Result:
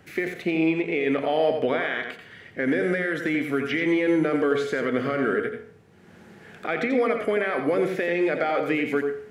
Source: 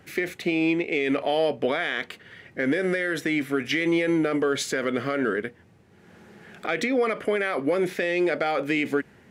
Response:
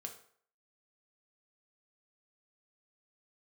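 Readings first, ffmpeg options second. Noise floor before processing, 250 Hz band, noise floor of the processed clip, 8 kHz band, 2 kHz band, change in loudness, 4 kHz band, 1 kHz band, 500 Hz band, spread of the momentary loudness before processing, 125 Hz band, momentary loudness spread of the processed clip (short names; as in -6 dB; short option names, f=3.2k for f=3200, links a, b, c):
-55 dBFS, +1.0 dB, -51 dBFS, under -10 dB, 0.0 dB, +0.5 dB, -4.5 dB, +1.0 dB, +1.5 dB, 7 LU, +1.0 dB, 7 LU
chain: -filter_complex "[0:a]acrossover=split=2900[a][b];[b]acompressor=threshold=-48dB:ratio=4:attack=1:release=60[c];[a][c]amix=inputs=2:normalize=0,asplit=2[d][e];[1:a]atrim=start_sample=2205,adelay=87[f];[e][f]afir=irnorm=-1:irlink=0,volume=-2.5dB[g];[d][g]amix=inputs=2:normalize=0"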